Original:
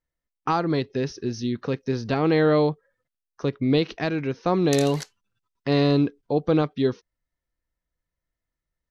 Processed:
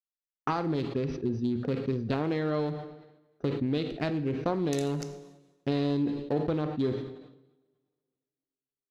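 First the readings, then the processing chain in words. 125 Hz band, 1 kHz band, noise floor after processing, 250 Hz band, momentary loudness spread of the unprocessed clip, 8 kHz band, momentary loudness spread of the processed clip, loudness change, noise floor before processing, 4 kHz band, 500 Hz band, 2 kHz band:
−6.0 dB, −7.5 dB, below −85 dBFS, −6.0 dB, 10 LU, −9.5 dB, 8 LU, −7.0 dB, below −85 dBFS, −9.5 dB, −8.0 dB, −9.0 dB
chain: adaptive Wiener filter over 41 samples
downward expander −50 dBFS
downward compressor, threshold −26 dBFS, peak gain reduction 10 dB
coupled-rooms reverb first 0.68 s, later 2.2 s, from −19 dB, DRR 10 dB
level that may fall only so fast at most 62 dB per second

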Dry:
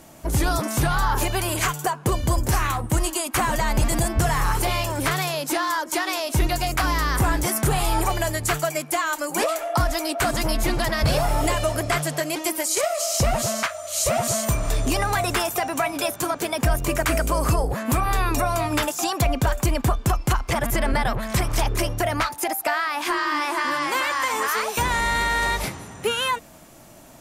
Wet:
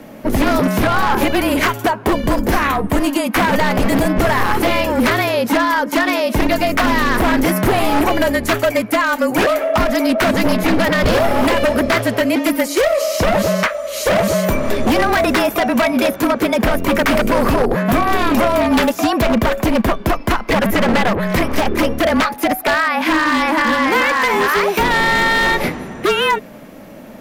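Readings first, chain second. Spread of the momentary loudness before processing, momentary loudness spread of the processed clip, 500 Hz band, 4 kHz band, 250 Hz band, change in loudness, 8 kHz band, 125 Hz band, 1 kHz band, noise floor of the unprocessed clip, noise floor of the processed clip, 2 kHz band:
3 LU, 3 LU, +10.0 dB, +5.5 dB, +12.5 dB, +7.5 dB, −3.0 dB, +1.0 dB, +7.0 dB, −41 dBFS, −33 dBFS, +9.0 dB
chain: octave-band graphic EQ 125/250/500/2,000/8,000 Hz −7/+11/+7/+6/−12 dB
wave folding −13.5 dBFS
frequency shifter −35 Hz
level +5 dB

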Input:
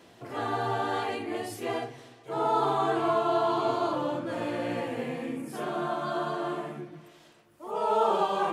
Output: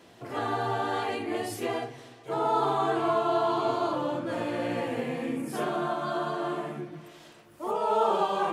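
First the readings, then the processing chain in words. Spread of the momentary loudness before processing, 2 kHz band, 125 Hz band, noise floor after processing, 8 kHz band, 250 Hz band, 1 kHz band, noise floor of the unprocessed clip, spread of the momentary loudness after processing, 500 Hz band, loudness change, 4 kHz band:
11 LU, +1.0 dB, +1.0 dB, −54 dBFS, +2.0 dB, +1.0 dB, +0.5 dB, −55 dBFS, 10 LU, +0.5 dB, +0.5 dB, +0.5 dB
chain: camcorder AGC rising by 6 dB per second

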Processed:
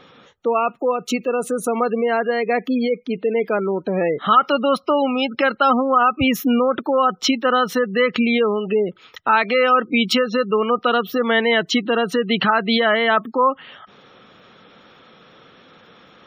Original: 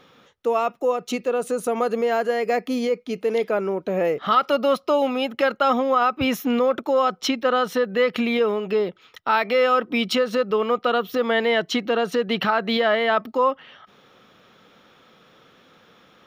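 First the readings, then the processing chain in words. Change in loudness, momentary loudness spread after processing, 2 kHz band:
+3.0 dB, 6 LU, +5.0 dB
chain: dynamic equaliser 580 Hz, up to −5 dB, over −33 dBFS, Q 1.4
gate on every frequency bin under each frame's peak −25 dB strong
level +5.5 dB

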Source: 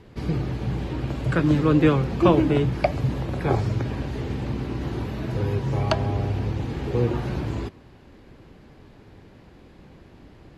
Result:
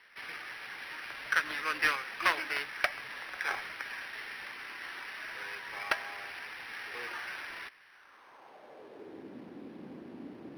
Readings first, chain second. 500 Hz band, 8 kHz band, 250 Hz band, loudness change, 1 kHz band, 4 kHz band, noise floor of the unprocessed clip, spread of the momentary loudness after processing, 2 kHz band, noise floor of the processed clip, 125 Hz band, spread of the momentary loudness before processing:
−20.5 dB, can't be measured, −25.5 dB, −11.0 dB, −7.0 dB, −1.0 dB, −50 dBFS, 18 LU, +4.0 dB, −58 dBFS, −38.0 dB, 11 LU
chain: stylus tracing distortion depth 0.37 ms
high-pass filter sweep 1,800 Hz → 250 Hz, 0:07.85–0:09.35
linearly interpolated sample-rate reduction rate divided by 6×

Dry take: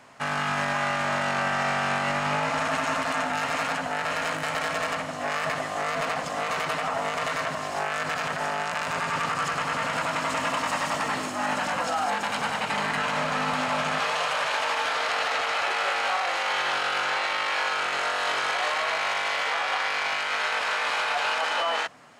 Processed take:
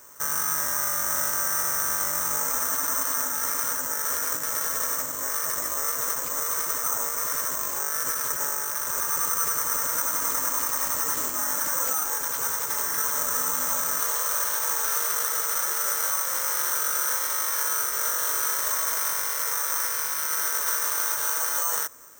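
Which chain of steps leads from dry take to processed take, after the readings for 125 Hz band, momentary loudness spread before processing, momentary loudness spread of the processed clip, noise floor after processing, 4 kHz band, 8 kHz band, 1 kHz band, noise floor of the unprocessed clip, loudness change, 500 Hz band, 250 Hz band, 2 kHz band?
−11.5 dB, 3 LU, 2 LU, −30 dBFS, −5.5 dB, +16.0 dB, −6.5 dB, −32 dBFS, +2.5 dB, −8.0 dB, −10.0 dB, −7.0 dB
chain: brickwall limiter −20.5 dBFS, peak gain reduction 4.5 dB
phaser with its sweep stopped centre 730 Hz, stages 6
bad sample-rate conversion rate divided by 6×, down none, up zero stuff
level −1 dB

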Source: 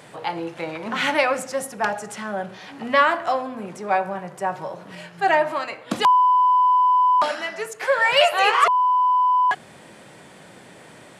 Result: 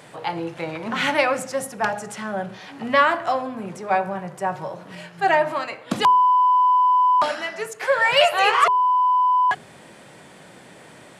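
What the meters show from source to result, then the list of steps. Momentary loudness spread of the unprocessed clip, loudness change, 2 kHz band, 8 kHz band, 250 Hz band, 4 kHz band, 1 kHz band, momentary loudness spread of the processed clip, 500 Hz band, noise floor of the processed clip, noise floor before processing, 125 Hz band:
15 LU, 0.0 dB, 0.0 dB, can't be measured, +1.5 dB, 0.0 dB, 0.0 dB, 14 LU, 0.0 dB, −46 dBFS, −46 dBFS, +3.5 dB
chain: hum removal 103.1 Hz, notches 5
dynamic equaliser 110 Hz, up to +7 dB, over −46 dBFS, Q 1

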